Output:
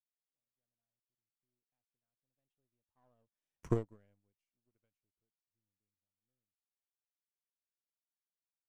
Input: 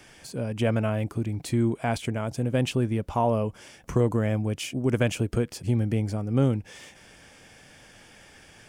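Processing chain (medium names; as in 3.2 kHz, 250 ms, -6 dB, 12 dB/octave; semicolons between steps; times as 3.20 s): partial rectifier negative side -7 dB; Doppler pass-by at 3.64 s, 22 m/s, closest 1.2 m; upward expansion 2.5:1, over -52 dBFS; trim +1.5 dB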